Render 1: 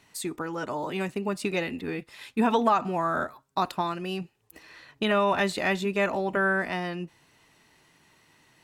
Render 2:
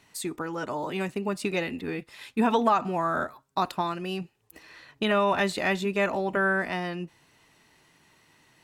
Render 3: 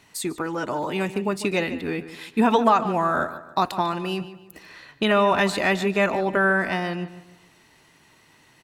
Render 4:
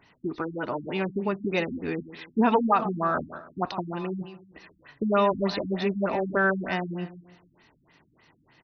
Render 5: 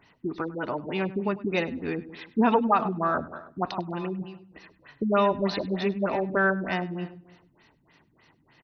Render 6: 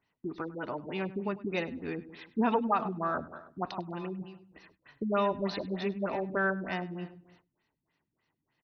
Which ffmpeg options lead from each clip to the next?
ffmpeg -i in.wav -af anull out.wav
ffmpeg -i in.wav -filter_complex "[0:a]asplit=2[link_01][link_02];[link_02]adelay=147,lowpass=frequency=4700:poles=1,volume=-13.5dB,asplit=2[link_03][link_04];[link_04]adelay=147,lowpass=frequency=4700:poles=1,volume=0.38,asplit=2[link_05][link_06];[link_06]adelay=147,lowpass=frequency=4700:poles=1,volume=0.38,asplit=2[link_07][link_08];[link_08]adelay=147,lowpass=frequency=4700:poles=1,volume=0.38[link_09];[link_01][link_03][link_05][link_07][link_09]amix=inputs=5:normalize=0,volume=4.5dB" out.wav
ffmpeg -i in.wav -af "afftfilt=real='re*lt(b*sr/1024,280*pow(6300/280,0.5+0.5*sin(2*PI*3.3*pts/sr)))':imag='im*lt(b*sr/1024,280*pow(6300/280,0.5+0.5*sin(2*PI*3.3*pts/sr)))':win_size=1024:overlap=0.75,volume=-2.5dB" out.wav
ffmpeg -i in.wav -af "aecho=1:1:100|200:0.119|0.0178" out.wav
ffmpeg -i in.wav -af "agate=range=-13dB:threshold=-56dB:ratio=16:detection=peak,volume=-6dB" out.wav

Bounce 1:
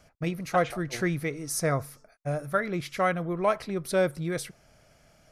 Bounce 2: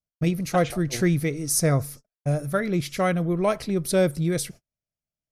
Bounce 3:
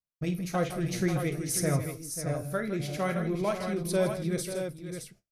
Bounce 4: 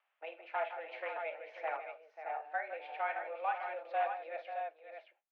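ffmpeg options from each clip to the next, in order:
ffmpeg -i in.wav -af "agate=range=-42dB:threshold=-48dB:ratio=16:detection=peak,equalizer=frequency=1200:width=0.48:gain=-10.5,volume=9dB" out.wav
ffmpeg -i in.wav -filter_complex "[0:a]flanger=delay=6.9:depth=8.5:regen=-63:speed=0.51:shape=triangular,asplit=2[link_01][link_02];[link_02]aecho=0:1:50|161|540|617:0.266|0.237|0.282|0.447[link_03];[link_01][link_03]amix=inputs=2:normalize=0,volume=-3dB" out.wav
ffmpeg -i in.wav -af "acompressor=mode=upward:threshold=-48dB:ratio=2.5,aeval=exprs='0.1*(abs(mod(val(0)/0.1+3,4)-2)-1)':channel_layout=same,highpass=frequency=430:width_type=q:width=0.5412,highpass=frequency=430:width_type=q:width=1.307,lowpass=frequency=2700:width_type=q:width=0.5176,lowpass=frequency=2700:width_type=q:width=0.7071,lowpass=frequency=2700:width_type=q:width=1.932,afreqshift=160,volume=-4dB" out.wav

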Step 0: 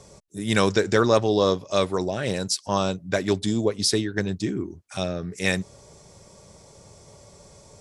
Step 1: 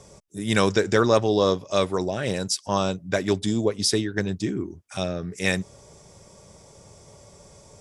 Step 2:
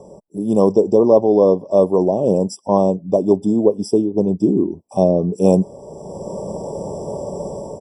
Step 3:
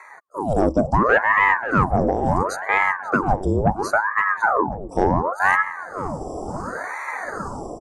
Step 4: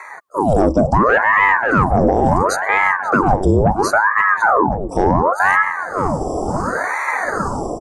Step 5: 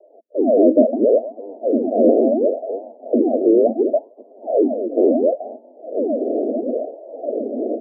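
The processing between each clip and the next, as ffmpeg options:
ffmpeg -i in.wav -af "bandreject=frequency=4200:width=12" out.wav
ffmpeg -i in.wav -af "firequalizer=gain_entry='entry(110,0);entry(180,12);entry(520,14);entry(950,9);entry(1600,-26);entry(4000,-11);entry(6400,-2)':delay=0.05:min_phase=1,dynaudnorm=framelen=170:gausssize=5:maxgain=14dB,afftfilt=real='re*eq(mod(floor(b*sr/1024/1200),2),0)':imag='im*eq(mod(floor(b*sr/1024/1200),2),0)':win_size=1024:overlap=0.75,volume=-1dB" out.wav
ffmpeg -i in.wav -filter_complex "[0:a]asoftclip=type=tanh:threshold=-6dB,asplit=2[link_01][link_02];[link_02]adelay=536,lowpass=frequency=1600:poles=1,volume=-11dB,asplit=2[link_03][link_04];[link_04]adelay=536,lowpass=frequency=1600:poles=1,volume=0.46,asplit=2[link_05][link_06];[link_06]adelay=536,lowpass=frequency=1600:poles=1,volume=0.46,asplit=2[link_07][link_08];[link_08]adelay=536,lowpass=frequency=1600:poles=1,volume=0.46,asplit=2[link_09][link_10];[link_10]adelay=536,lowpass=frequency=1600:poles=1,volume=0.46[link_11];[link_01][link_03][link_05][link_07][link_09][link_11]amix=inputs=6:normalize=0,aeval=exprs='val(0)*sin(2*PI*810*n/s+810*0.85/0.71*sin(2*PI*0.71*n/s))':channel_layout=same" out.wav
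ffmpeg -i in.wav -af "alimiter=limit=-14dB:level=0:latency=1:release=15,volume=9dB" out.wav
ffmpeg -i in.wav -af "asuperpass=centerf=390:order=20:qfactor=0.89,volume=3dB" out.wav

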